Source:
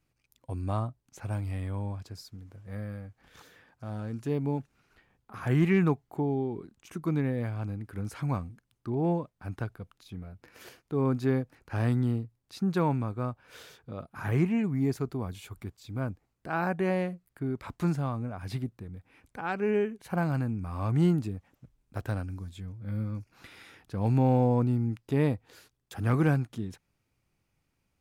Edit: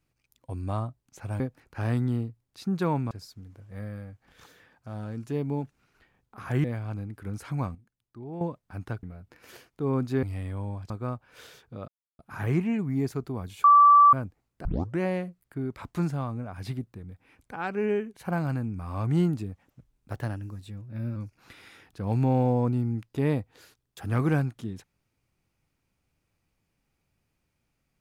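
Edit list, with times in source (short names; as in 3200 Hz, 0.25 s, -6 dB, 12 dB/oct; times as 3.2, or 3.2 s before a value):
1.4–2.07 swap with 11.35–13.06
5.6–7.35 cut
8.46–9.12 gain -10.5 dB
9.74–10.15 cut
14.04 insert silence 0.31 s
15.49–15.98 bleep 1160 Hz -12 dBFS
16.5 tape start 0.35 s
21.99–23.1 speed 109%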